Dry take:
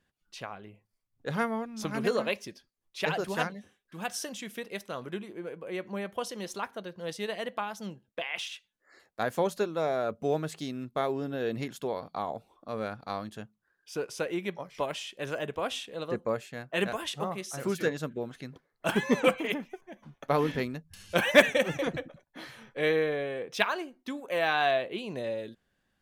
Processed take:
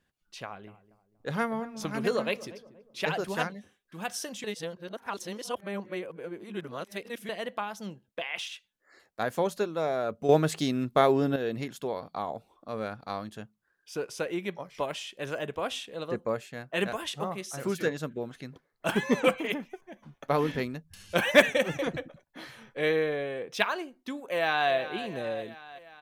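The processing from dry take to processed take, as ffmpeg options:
-filter_complex "[0:a]asettb=1/sr,asplit=3[s0][s1][s2];[s0]atrim=end=0.434[s3];[s1]atrim=start=0.43:end=3.18,asetpts=PTS-STARTPTS,afade=t=in:d=0.004:c=qsin,afade=t=out:st=2.746:d=0.004:c=qsin,asplit=2[s4][s5];[s5]adelay=238,lowpass=f=910:p=1,volume=0.168,asplit=2[s6][s7];[s7]adelay=238,lowpass=f=910:p=1,volume=0.42,asplit=2[s8][s9];[s9]adelay=238,lowpass=f=910:p=1,volume=0.42,asplit=2[s10][s11];[s11]adelay=238,lowpass=f=910:p=1,volume=0.42[s12];[s4][s6][s8][s10][s12]amix=inputs=5:normalize=0,atrim=end_sample=121275[s13];[s2]atrim=start=3.176[s14];[s3][s13]acrossfade=d=0.004:c1=hsin:c2=qsin[s15];[s15][s14]acrossfade=d=0.004:c1=qsin:c2=hsin,asplit=2[s16][s17];[s17]afade=t=in:st=24.29:d=0.01,afade=t=out:st=24.7:d=0.01,aecho=0:1:360|720|1080|1440|1800|2160|2520|2880:0.223872|0.145517|0.094586|0.0614809|0.0399626|0.0259757|0.0168842|0.0109747[s18];[s16][s18]amix=inputs=2:normalize=0,asplit=5[s19][s20][s21][s22][s23];[s19]atrim=end=4.442[s24];[s20]atrim=start=4.438:end=7.292,asetpts=PTS-STARTPTS,areverse[s25];[s21]atrim=start=7.288:end=10.292[s26];[s22]atrim=start=10.288:end=11.362,asetpts=PTS-STARTPTS,volume=2.51[s27];[s23]atrim=start=11.358[s28];[s24][s25]acrossfade=d=0.004:c1=hsin:c2=hsin[s29];[s29][s26]acrossfade=d=0.004:c1=hsin:c2=hsin[s30];[s30][s27]acrossfade=d=0.004:c1=hsin:c2=hsin[s31];[s31][s28]acrossfade=d=0.004:c1=hsin:c2=hsin"

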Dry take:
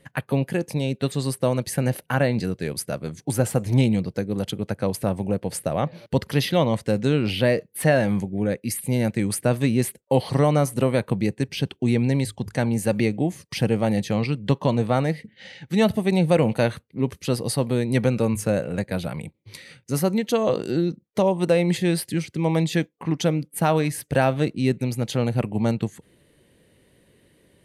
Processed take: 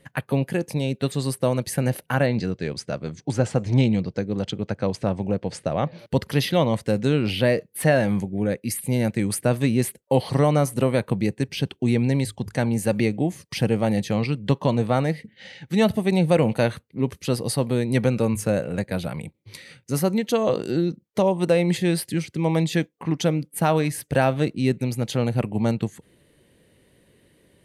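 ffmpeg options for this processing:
-filter_complex "[0:a]asettb=1/sr,asplit=3[s0][s1][s2];[s0]atrim=end=2.264[s3];[s1]atrim=start=2.26:end=5.99,asetpts=PTS-STARTPTS,afade=t=in:d=0.004:c=qsin,afade=t=out:st=3.726:d=0.004:c=qsin,lowpass=f=6900:w=0.5412,lowpass=f=6900:w=1.3066[s4];[s2]atrim=start=5.986[s5];[s3][s4]acrossfade=d=0.004:c1=hsin:c2=qsin[s6];[s6][s5]acrossfade=d=0.004:c1=qsin:c2=hsin"

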